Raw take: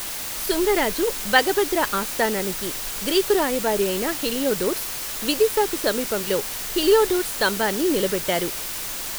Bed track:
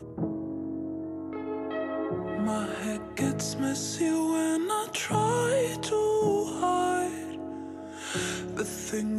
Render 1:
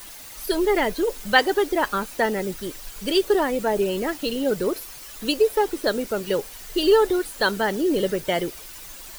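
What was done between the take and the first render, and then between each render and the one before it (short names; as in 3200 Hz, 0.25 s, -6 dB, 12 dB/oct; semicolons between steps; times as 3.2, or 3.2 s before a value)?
denoiser 12 dB, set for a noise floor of -30 dBFS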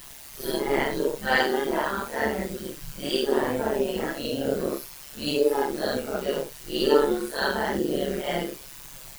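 phase scrambler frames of 0.2 s; AM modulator 140 Hz, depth 65%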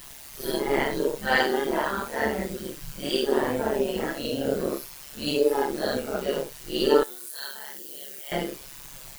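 7.03–8.32 pre-emphasis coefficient 0.97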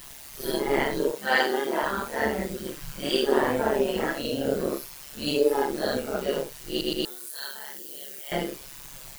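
1.11–1.83 Bessel high-pass 270 Hz; 2.66–4.22 bell 1300 Hz +4 dB 2.2 oct; 6.69 stutter in place 0.12 s, 3 plays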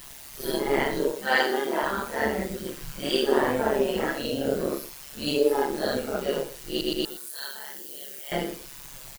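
echo 0.117 s -16 dB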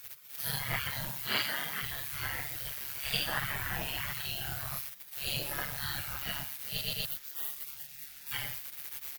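spectral gate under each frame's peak -15 dB weak; ten-band EQ 125 Hz +10 dB, 250 Hz -8 dB, 500 Hz -4 dB, 1000 Hz -4 dB, 2000 Hz +3 dB, 8000 Hz -7 dB, 16000 Hz +9 dB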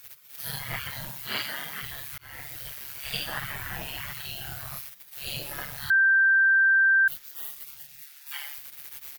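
2.18–2.63 fade in equal-power; 5.9–7.08 bleep 1570 Hz -16.5 dBFS; 8.02–8.58 HPF 750 Hz 24 dB/oct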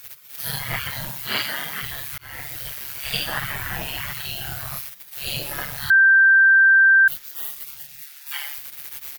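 gain +6.5 dB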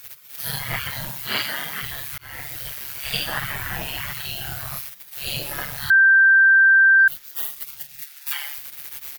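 6.98–8.34 transient shaper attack +11 dB, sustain -3 dB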